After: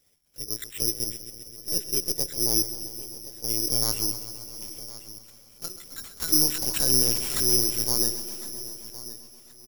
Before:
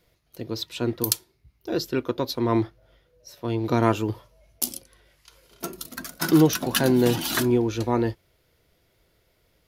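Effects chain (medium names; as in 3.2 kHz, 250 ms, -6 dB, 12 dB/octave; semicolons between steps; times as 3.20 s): 0.80–3.83 s: high-order bell 1.2 kHz -10.5 dB 1.1 oct; peak limiter -12 dBFS, peak gain reduction 8.5 dB; feedback delay 1063 ms, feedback 25%, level -16 dB; LPC vocoder at 8 kHz pitch kept; careless resampling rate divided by 8×, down none, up zero stuff; bit-crushed delay 131 ms, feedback 80%, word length 7-bit, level -13.5 dB; trim -10 dB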